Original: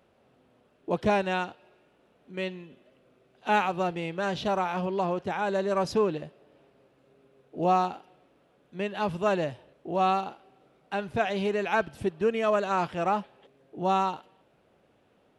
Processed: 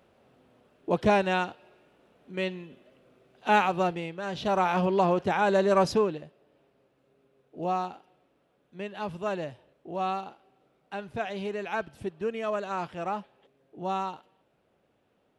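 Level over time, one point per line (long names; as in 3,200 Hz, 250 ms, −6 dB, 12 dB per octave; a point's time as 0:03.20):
0:03.86 +2 dB
0:04.21 −6 dB
0:04.67 +4.5 dB
0:05.83 +4.5 dB
0:06.23 −5.5 dB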